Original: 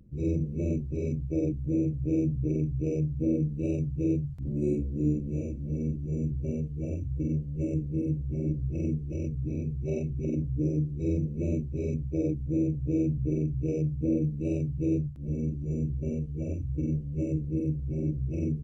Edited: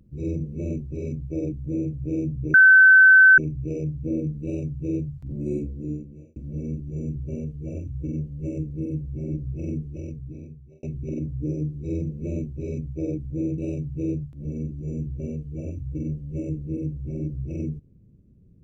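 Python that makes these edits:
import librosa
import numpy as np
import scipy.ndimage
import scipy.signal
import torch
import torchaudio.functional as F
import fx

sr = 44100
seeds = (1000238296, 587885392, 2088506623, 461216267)

y = fx.edit(x, sr, fx.insert_tone(at_s=2.54, length_s=0.84, hz=1530.0, db=-8.5),
    fx.fade_out_span(start_s=4.77, length_s=0.75),
    fx.fade_out_span(start_s=8.97, length_s=1.02),
    fx.cut(start_s=12.74, length_s=1.67), tone=tone)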